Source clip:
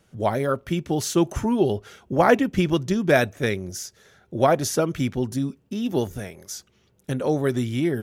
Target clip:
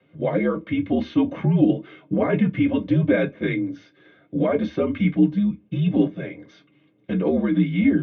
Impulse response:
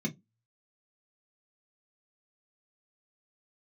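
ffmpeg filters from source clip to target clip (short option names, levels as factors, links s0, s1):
-filter_complex "[0:a]asettb=1/sr,asplit=3[s0][s1][s2];[s0]atrim=end=2.654[s3];[s1]atrim=start=2.65:end=3.12,asetpts=PTS-STARTPTS,afade=t=in:d=0.004:c=qsin,afade=t=out:st=0.466:d=0.004:c=qsin,equalizer=f=650:t=o:w=0.4:g=9.5[s4];[s2]atrim=start=3.116[s5];[s3][s4]acrossfade=d=0.004:c1=hsin:c2=qsin[s6];[s6][s5]acrossfade=d=0.004:c1=qsin:c2=hsin,alimiter=limit=0.168:level=0:latency=1:release=47[s7];[1:a]atrim=start_sample=2205[s8];[s7][s8]afir=irnorm=-1:irlink=0,highpass=f=350:t=q:w=0.5412,highpass=f=350:t=q:w=1.307,lowpass=f=3400:t=q:w=0.5176,lowpass=f=3400:t=q:w=0.7071,lowpass=f=3400:t=q:w=1.932,afreqshift=-70"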